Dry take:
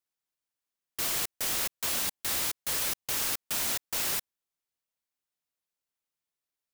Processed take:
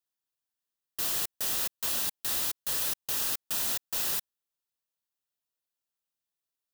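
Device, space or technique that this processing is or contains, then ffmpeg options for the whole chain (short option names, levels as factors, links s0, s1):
presence and air boost: -af "equalizer=f=3700:t=o:w=0.77:g=2,highshelf=f=12000:g=5.5,bandreject=f=2200:w=6.4,volume=0.708"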